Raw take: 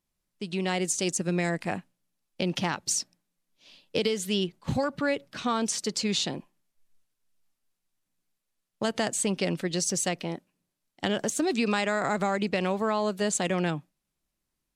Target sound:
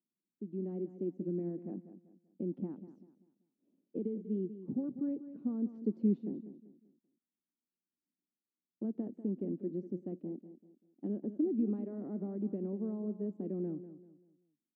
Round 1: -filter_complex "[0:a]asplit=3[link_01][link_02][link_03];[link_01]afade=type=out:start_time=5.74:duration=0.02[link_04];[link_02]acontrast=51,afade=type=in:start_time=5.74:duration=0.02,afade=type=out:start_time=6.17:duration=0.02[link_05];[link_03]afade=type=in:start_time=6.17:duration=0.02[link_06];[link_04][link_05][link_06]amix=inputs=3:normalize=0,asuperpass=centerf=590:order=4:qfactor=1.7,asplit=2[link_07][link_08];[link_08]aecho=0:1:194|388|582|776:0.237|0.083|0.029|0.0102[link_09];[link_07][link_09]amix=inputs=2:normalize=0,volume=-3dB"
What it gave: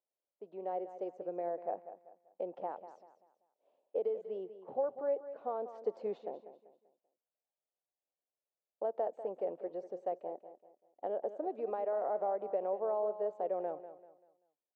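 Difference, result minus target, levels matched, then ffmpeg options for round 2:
250 Hz band −15.5 dB
-filter_complex "[0:a]asplit=3[link_01][link_02][link_03];[link_01]afade=type=out:start_time=5.74:duration=0.02[link_04];[link_02]acontrast=51,afade=type=in:start_time=5.74:duration=0.02,afade=type=out:start_time=6.17:duration=0.02[link_05];[link_03]afade=type=in:start_time=6.17:duration=0.02[link_06];[link_04][link_05][link_06]amix=inputs=3:normalize=0,asuperpass=centerf=270:order=4:qfactor=1.7,asplit=2[link_07][link_08];[link_08]aecho=0:1:194|388|582|776:0.237|0.083|0.029|0.0102[link_09];[link_07][link_09]amix=inputs=2:normalize=0,volume=-3dB"

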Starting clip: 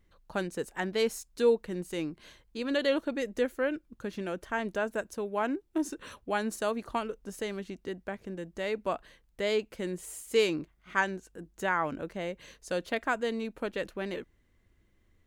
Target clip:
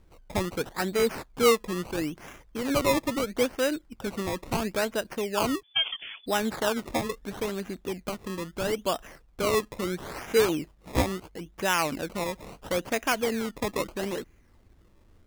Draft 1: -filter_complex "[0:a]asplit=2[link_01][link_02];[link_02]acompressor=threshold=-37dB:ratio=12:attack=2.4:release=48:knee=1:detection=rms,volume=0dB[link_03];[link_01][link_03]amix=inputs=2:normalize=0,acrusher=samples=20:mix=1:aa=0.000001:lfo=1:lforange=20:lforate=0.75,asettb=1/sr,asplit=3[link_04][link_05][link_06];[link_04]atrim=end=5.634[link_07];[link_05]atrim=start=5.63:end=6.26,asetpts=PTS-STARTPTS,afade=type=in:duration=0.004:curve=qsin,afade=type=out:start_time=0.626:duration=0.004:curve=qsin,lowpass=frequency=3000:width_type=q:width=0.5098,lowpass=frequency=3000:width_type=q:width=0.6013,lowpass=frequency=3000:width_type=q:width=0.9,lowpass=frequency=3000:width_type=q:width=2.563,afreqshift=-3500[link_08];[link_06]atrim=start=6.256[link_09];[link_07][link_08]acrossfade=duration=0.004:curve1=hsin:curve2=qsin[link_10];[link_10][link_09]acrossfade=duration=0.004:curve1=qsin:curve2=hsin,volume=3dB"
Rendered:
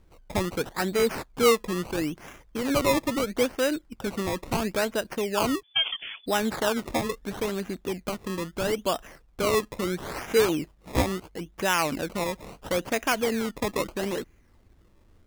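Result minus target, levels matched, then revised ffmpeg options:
downward compressor: peak gain reduction −10 dB
-filter_complex "[0:a]asplit=2[link_01][link_02];[link_02]acompressor=threshold=-48dB:ratio=12:attack=2.4:release=48:knee=1:detection=rms,volume=0dB[link_03];[link_01][link_03]amix=inputs=2:normalize=0,acrusher=samples=20:mix=1:aa=0.000001:lfo=1:lforange=20:lforate=0.75,asettb=1/sr,asplit=3[link_04][link_05][link_06];[link_04]atrim=end=5.634[link_07];[link_05]atrim=start=5.63:end=6.26,asetpts=PTS-STARTPTS,afade=type=in:duration=0.004:curve=qsin,afade=type=out:start_time=0.626:duration=0.004:curve=qsin,lowpass=frequency=3000:width_type=q:width=0.5098,lowpass=frequency=3000:width_type=q:width=0.6013,lowpass=frequency=3000:width_type=q:width=0.9,lowpass=frequency=3000:width_type=q:width=2.563,afreqshift=-3500[link_08];[link_06]atrim=start=6.256[link_09];[link_07][link_08]acrossfade=duration=0.004:curve1=hsin:curve2=qsin[link_10];[link_10][link_09]acrossfade=duration=0.004:curve1=qsin:curve2=hsin,volume=3dB"

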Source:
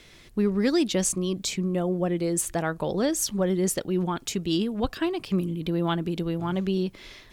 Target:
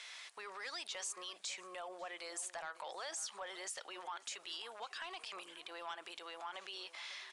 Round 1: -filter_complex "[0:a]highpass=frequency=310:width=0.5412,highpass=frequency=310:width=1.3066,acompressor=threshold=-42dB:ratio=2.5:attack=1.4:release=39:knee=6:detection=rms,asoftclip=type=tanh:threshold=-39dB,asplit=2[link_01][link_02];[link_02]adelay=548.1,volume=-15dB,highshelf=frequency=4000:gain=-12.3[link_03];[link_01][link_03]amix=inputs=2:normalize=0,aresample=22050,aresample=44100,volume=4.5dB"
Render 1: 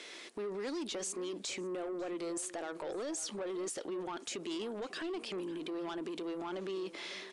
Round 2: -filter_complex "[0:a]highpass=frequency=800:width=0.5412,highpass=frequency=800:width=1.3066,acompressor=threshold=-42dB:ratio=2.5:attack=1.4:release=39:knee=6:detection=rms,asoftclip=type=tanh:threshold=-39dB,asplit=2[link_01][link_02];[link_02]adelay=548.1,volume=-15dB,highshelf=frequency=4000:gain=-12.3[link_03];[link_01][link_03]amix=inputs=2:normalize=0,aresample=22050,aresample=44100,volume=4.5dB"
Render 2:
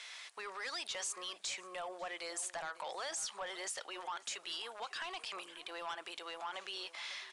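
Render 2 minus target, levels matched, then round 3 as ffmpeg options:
downward compressor: peak gain reduction −5 dB
-filter_complex "[0:a]highpass=frequency=800:width=0.5412,highpass=frequency=800:width=1.3066,acompressor=threshold=-50dB:ratio=2.5:attack=1.4:release=39:knee=6:detection=rms,asoftclip=type=tanh:threshold=-39dB,asplit=2[link_01][link_02];[link_02]adelay=548.1,volume=-15dB,highshelf=frequency=4000:gain=-12.3[link_03];[link_01][link_03]amix=inputs=2:normalize=0,aresample=22050,aresample=44100,volume=4.5dB"

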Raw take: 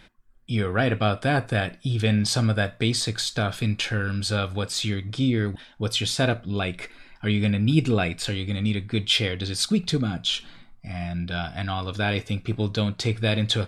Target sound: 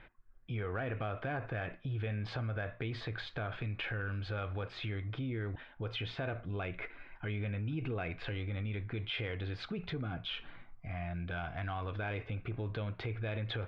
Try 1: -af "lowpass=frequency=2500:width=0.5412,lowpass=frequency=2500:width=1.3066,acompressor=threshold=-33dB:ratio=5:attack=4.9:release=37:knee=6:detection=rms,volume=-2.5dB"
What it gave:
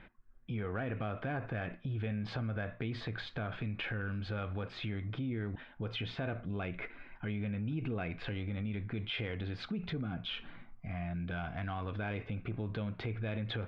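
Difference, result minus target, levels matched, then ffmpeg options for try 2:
250 Hz band +3.5 dB
-af "lowpass=frequency=2500:width=0.5412,lowpass=frequency=2500:width=1.3066,equalizer=frequency=210:width_type=o:width=0.73:gain=-9.5,acompressor=threshold=-33dB:ratio=5:attack=4.9:release=37:knee=6:detection=rms,volume=-2.5dB"

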